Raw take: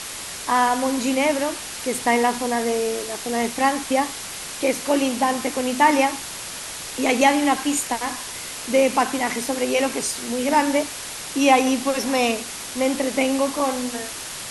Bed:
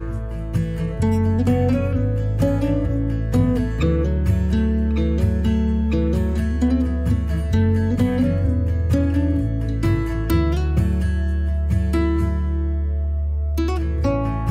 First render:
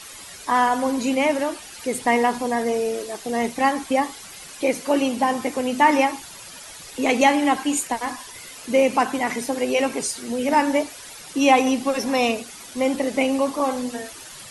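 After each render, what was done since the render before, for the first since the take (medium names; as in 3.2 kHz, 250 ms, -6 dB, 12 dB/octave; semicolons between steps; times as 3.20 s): noise reduction 11 dB, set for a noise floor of -33 dBFS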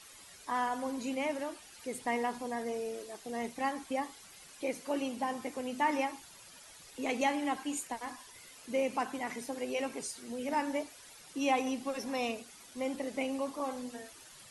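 trim -14 dB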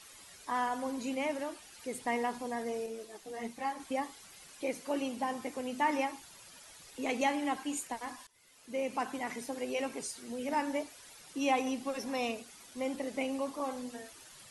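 2.86–3.80 s: three-phase chorus; 8.27–9.09 s: fade in, from -21 dB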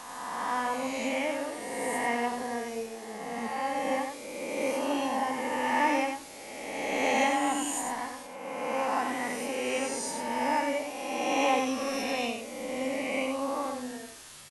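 reverse spectral sustain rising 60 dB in 1.96 s; delay 92 ms -5.5 dB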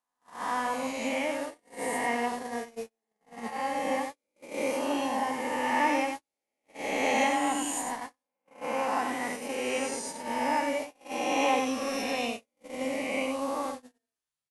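gate -33 dBFS, range -45 dB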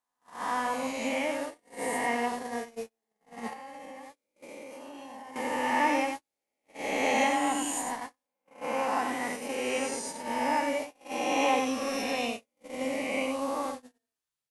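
3.53–5.36 s: compression 10:1, threshold -41 dBFS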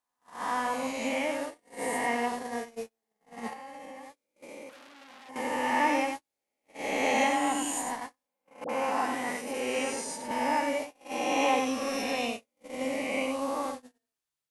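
4.69–5.29 s: transformer saturation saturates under 3.7 kHz; 8.64–10.31 s: phase dispersion highs, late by 51 ms, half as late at 760 Hz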